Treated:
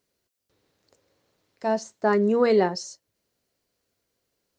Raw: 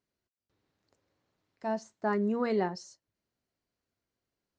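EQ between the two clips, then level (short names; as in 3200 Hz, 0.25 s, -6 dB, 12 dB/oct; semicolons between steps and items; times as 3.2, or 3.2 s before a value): bell 490 Hz +7 dB 0.65 oct; high shelf 2900 Hz +8.5 dB; +5.5 dB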